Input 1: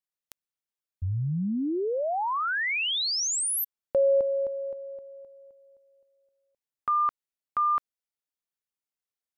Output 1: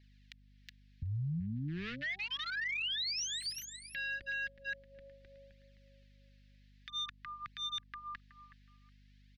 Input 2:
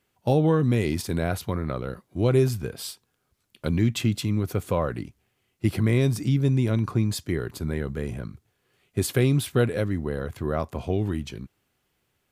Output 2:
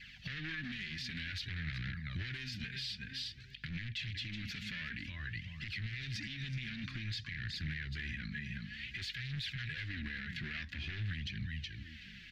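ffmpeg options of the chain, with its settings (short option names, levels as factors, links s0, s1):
-filter_complex "[0:a]asplit=2[s0][s1];[s1]adelay=370,lowpass=f=2000:p=1,volume=0.0631,asplit=2[s2][s3];[s3]adelay=370,lowpass=f=2000:p=1,volume=0.38[s4];[s2][s4]amix=inputs=2:normalize=0[s5];[s0][s5]amix=inputs=2:normalize=0,acrossover=split=83|1300|3600[s6][s7][s8][s9];[s6]acompressor=threshold=0.0141:ratio=4[s10];[s7]acompressor=threshold=0.0794:ratio=4[s11];[s8]acompressor=threshold=0.0178:ratio=4[s12];[s9]acompressor=threshold=0.0282:ratio=4[s13];[s10][s11][s12][s13]amix=inputs=4:normalize=0,adynamicequalizer=threshold=0.0158:dfrequency=440:dqfactor=1.4:tfrequency=440:tqfactor=1.4:attack=5:release=100:ratio=0.4:range=1.5:mode=cutabove:tftype=bell,asplit=2[s14][s15];[s15]aecho=0:1:369:0.188[s16];[s14][s16]amix=inputs=2:normalize=0,flanger=delay=0.4:depth=5:regen=9:speed=0.53:shape=triangular,volume=44.7,asoftclip=hard,volume=0.0224,acompressor=threshold=0.00708:ratio=6:attack=7.2:release=757:knee=6:detection=peak,firequalizer=gain_entry='entry(170,0);entry(470,-25);entry(1000,-22);entry(1700,14);entry(4300,11);entry(8900,-19)':delay=0.05:min_phase=1,alimiter=level_in=15:limit=0.0631:level=0:latency=1:release=379,volume=0.0668,aeval=exprs='val(0)+0.000141*(sin(2*PI*50*n/s)+sin(2*PI*2*50*n/s)/2+sin(2*PI*3*50*n/s)/3+sin(2*PI*4*50*n/s)/4+sin(2*PI*5*50*n/s)/5)':c=same,volume=5.96"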